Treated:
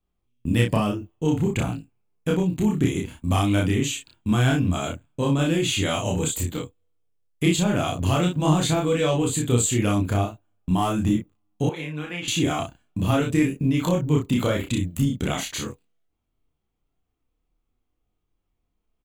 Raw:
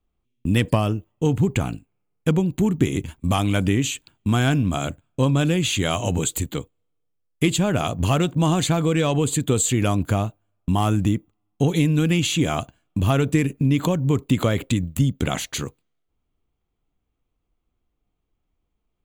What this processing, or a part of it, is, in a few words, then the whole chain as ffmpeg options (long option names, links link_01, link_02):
double-tracked vocal: -filter_complex "[0:a]asplit=2[link_01][link_02];[link_02]adelay=33,volume=-3dB[link_03];[link_01][link_03]amix=inputs=2:normalize=0,flanger=delay=22.5:depth=7.8:speed=0.44,asettb=1/sr,asplit=3[link_04][link_05][link_06];[link_04]atrim=end=11.694[link_07];[link_05]atrim=start=11.69:end=12.28,asetpts=PTS-STARTPTS,afade=type=in:duration=0.004:curve=qsin,afade=type=out:start_time=0.586:duration=0.004:curve=qsin,acrossover=split=510 2900:gain=0.141 1 0.141[link_08][link_09][link_10];[link_08][link_09][link_10]amix=inputs=3:normalize=0[link_11];[link_06]atrim=start=12.276[link_12];[link_07][link_11]acrossfade=duration=0.004:curve1=hsin:curve2=qsin[link_13];[link_13][link_12]acrossfade=duration=0.004:curve1=qsin:curve2=hsin"